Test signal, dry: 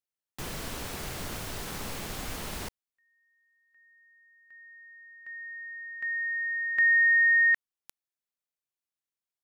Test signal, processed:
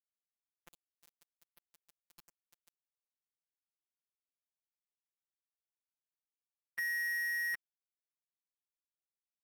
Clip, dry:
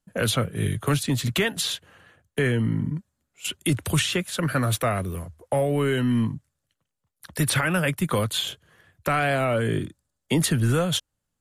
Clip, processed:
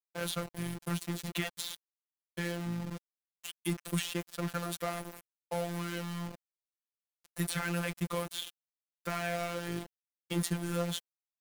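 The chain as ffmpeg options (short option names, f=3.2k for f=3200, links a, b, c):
-af "agate=range=-33dB:threshold=-55dB:ratio=3:release=31:detection=peak,aeval=exprs='val(0)*gte(abs(val(0)),0.0531)':c=same,afftfilt=real='hypot(re,im)*cos(PI*b)':imag='0':win_size=1024:overlap=0.75,volume=-8dB"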